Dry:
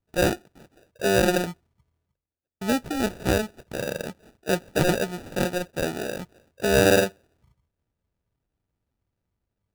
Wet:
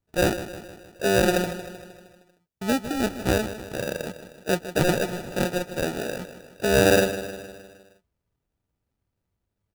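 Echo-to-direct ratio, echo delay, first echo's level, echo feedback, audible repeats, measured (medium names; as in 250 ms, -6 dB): -11.0 dB, 155 ms, -12.5 dB, 55%, 5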